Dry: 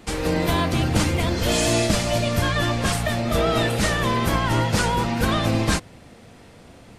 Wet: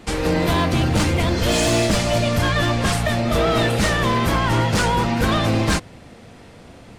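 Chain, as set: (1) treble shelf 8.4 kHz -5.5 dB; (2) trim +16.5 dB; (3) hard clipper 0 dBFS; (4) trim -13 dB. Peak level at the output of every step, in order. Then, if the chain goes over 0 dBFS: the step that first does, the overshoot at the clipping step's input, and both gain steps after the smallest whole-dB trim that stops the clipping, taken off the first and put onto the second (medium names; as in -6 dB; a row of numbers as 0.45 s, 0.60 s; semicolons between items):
-8.0 dBFS, +8.5 dBFS, 0.0 dBFS, -13.0 dBFS; step 2, 8.5 dB; step 2 +7.5 dB, step 4 -4 dB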